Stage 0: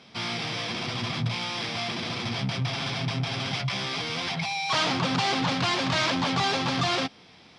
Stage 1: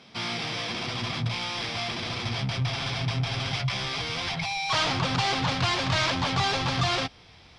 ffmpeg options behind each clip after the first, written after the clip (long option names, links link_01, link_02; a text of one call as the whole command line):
ffmpeg -i in.wav -af "asubboost=boost=10.5:cutoff=66" out.wav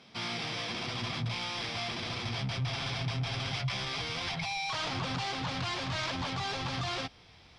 ffmpeg -i in.wav -af "alimiter=limit=-20.5dB:level=0:latency=1:release=14,volume=-4.5dB" out.wav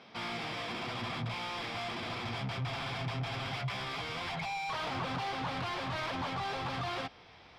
ffmpeg -i in.wav -filter_complex "[0:a]asplit=2[link_01][link_02];[link_02]highpass=frequency=720:poles=1,volume=14dB,asoftclip=type=tanh:threshold=-24.5dB[link_03];[link_01][link_03]amix=inputs=2:normalize=0,lowpass=frequency=1100:poles=1,volume=-6dB" out.wav